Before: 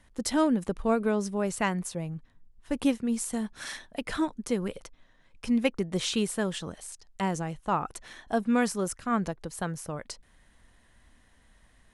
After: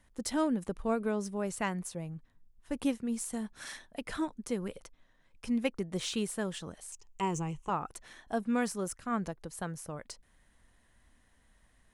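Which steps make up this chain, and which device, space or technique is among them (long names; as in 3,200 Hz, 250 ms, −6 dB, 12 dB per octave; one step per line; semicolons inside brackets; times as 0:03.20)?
0:06.92–0:07.70: EQ curve with evenly spaced ripples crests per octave 0.72, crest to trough 12 dB
exciter from parts (in parallel at −8 dB: high-pass filter 3,700 Hz 12 dB per octave + soft clipping −36 dBFS, distortion −8 dB + high-pass filter 4,900 Hz 6 dB per octave)
on the sum: level −5.5 dB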